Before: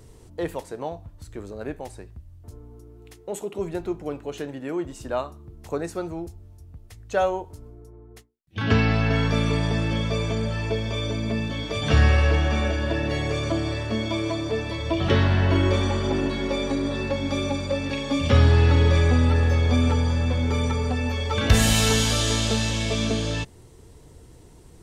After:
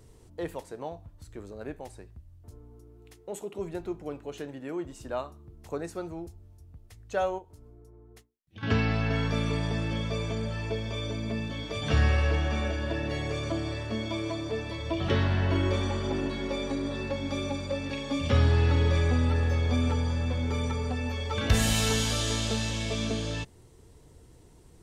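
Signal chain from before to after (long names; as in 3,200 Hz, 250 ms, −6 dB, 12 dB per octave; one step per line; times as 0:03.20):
0:07.38–0:08.63: downward compressor 3 to 1, threshold −41 dBFS, peak gain reduction 12.5 dB
level −6 dB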